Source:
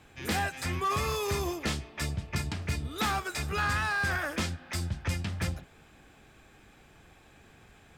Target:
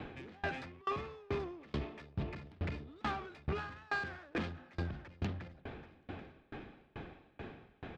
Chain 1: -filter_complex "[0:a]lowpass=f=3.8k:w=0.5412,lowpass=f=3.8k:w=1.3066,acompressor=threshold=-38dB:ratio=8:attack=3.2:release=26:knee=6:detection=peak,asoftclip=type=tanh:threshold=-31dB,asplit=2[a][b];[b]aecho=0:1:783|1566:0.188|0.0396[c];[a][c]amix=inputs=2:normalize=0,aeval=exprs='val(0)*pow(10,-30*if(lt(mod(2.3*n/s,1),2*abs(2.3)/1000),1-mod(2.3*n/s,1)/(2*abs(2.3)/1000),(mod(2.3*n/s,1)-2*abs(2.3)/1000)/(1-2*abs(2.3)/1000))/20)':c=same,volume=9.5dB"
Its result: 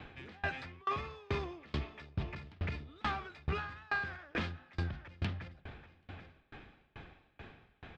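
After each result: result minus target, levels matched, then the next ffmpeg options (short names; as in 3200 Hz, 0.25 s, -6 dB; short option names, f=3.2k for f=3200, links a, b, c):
soft clip: distortion -10 dB; 250 Hz band -4.5 dB
-filter_complex "[0:a]lowpass=f=3.8k:w=0.5412,lowpass=f=3.8k:w=1.3066,acompressor=threshold=-38dB:ratio=8:attack=3.2:release=26:knee=6:detection=peak,asoftclip=type=tanh:threshold=-37dB,asplit=2[a][b];[b]aecho=0:1:783|1566:0.188|0.0396[c];[a][c]amix=inputs=2:normalize=0,aeval=exprs='val(0)*pow(10,-30*if(lt(mod(2.3*n/s,1),2*abs(2.3)/1000),1-mod(2.3*n/s,1)/(2*abs(2.3)/1000),(mod(2.3*n/s,1)-2*abs(2.3)/1000)/(1-2*abs(2.3)/1000))/20)':c=same,volume=9.5dB"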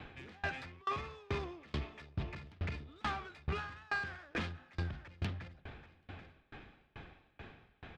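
250 Hz band -4.5 dB
-filter_complex "[0:a]lowpass=f=3.8k:w=0.5412,lowpass=f=3.8k:w=1.3066,equalizer=f=330:w=0.46:g=9,acompressor=threshold=-38dB:ratio=8:attack=3.2:release=26:knee=6:detection=peak,asoftclip=type=tanh:threshold=-37dB,asplit=2[a][b];[b]aecho=0:1:783|1566:0.188|0.0396[c];[a][c]amix=inputs=2:normalize=0,aeval=exprs='val(0)*pow(10,-30*if(lt(mod(2.3*n/s,1),2*abs(2.3)/1000),1-mod(2.3*n/s,1)/(2*abs(2.3)/1000),(mod(2.3*n/s,1)-2*abs(2.3)/1000)/(1-2*abs(2.3)/1000))/20)':c=same,volume=9.5dB"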